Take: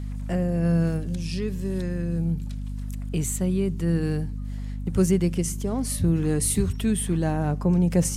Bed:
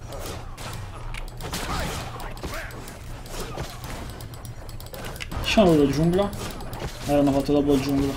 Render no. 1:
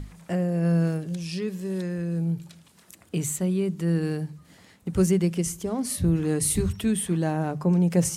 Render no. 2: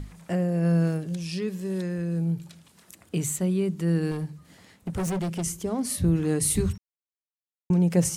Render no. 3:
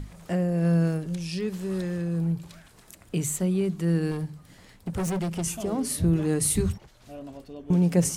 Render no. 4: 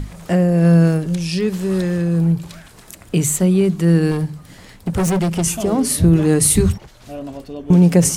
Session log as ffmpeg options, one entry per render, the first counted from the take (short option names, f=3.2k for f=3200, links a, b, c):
-af "bandreject=f=50:t=h:w=6,bandreject=f=100:t=h:w=6,bandreject=f=150:t=h:w=6,bandreject=f=200:t=h:w=6,bandreject=f=250:t=h:w=6"
-filter_complex "[0:a]asettb=1/sr,asplit=3[a][b][c];[a]atrim=end=4.114[d];[b]atrim=start=4.11:end=5.44,asetpts=PTS-STARTPTS,afade=t=in:d=0.004:c=qsin,afade=t=out:st=1.326:d=0.004:c=qsin,asoftclip=type=hard:threshold=-25.5dB[e];[c]atrim=start=5.436[f];[d][e]acrossfade=d=0.004:c1=hsin:c2=qsin[g];[g][f]acrossfade=d=0.004:c1=qsin:c2=hsin,asplit=3[h][i][j];[h]atrim=end=6.78,asetpts=PTS-STARTPTS,afade=t=out:st=6.776:d=0.004:c=hsin[k];[i]atrim=start=6.78:end=7.7,asetpts=PTS-STARTPTS,volume=0[l];[j]atrim=start=7.7,asetpts=PTS-STARTPTS,afade=t=in:d=0.004:c=hsin[m];[k][l][m]concat=n=3:v=0:a=1"
-filter_complex "[1:a]volume=-21dB[a];[0:a][a]amix=inputs=2:normalize=0"
-af "volume=10.5dB,alimiter=limit=-3dB:level=0:latency=1"